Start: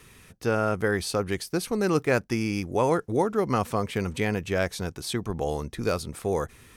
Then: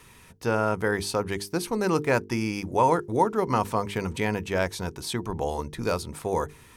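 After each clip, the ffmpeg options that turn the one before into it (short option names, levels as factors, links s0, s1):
-af "equalizer=f=940:w=7.2:g=10,bandreject=f=50:t=h:w=6,bandreject=f=100:t=h:w=6,bandreject=f=150:t=h:w=6,bandreject=f=200:t=h:w=6,bandreject=f=250:t=h:w=6,bandreject=f=300:t=h:w=6,bandreject=f=350:t=h:w=6,bandreject=f=400:t=h:w=6,bandreject=f=450:t=h:w=6"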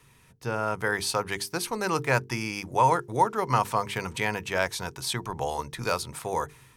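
-filter_complex "[0:a]equalizer=f=130:w=6.5:g=13,acrossover=split=640[s0][s1];[s1]dynaudnorm=f=290:g=5:m=3.76[s2];[s0][s2]amix=inputs=2:normalize=0,volume=0.422"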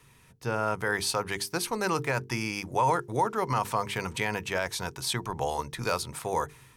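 -af "alimiter=limit=0.168:level=0:latency=1:release=30"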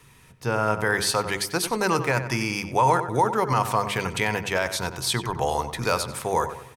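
-filter_complex "[0:a]asplit=2[s0][s1];[s1]adelay=93,lowpass=f=3100:p=1,volume=0.299,asplit=2[s2][s3];[s3]adelay=93,lowpass=f=3100:p=1,volume=0.43,asplit=2[s4][s5];[s5]adelay=93,lowpass=f=3100:p=1,volume=0.43,asplit=2[s6][s7];[s7]adelay=93,lowpass=f=3100:p=1,volume=0.43,asplit=2[s8][s9];[s9]adelay=93,lowpass=f=3100:p=1,volume=0.43[s10];[s0][s2][s4][s6][s8][s10]amix=inputs=6:normalize=0,volume=1.78"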